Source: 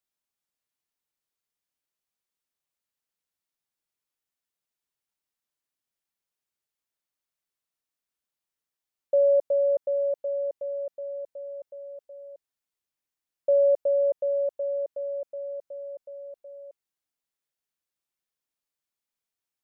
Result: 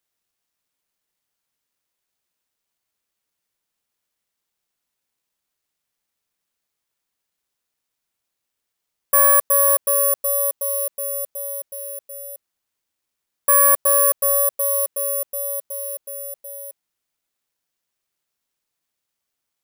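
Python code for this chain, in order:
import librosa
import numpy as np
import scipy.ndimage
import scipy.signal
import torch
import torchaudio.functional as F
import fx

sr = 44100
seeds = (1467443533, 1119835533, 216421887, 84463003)

y = fx.self_delay(x, sr, depth_ms=0.37)
y = (np.kron(y[::4], np.eye(4)[0]) * 4)[:len(y)]
y = y * librosa.db_to_amplitude(2.5)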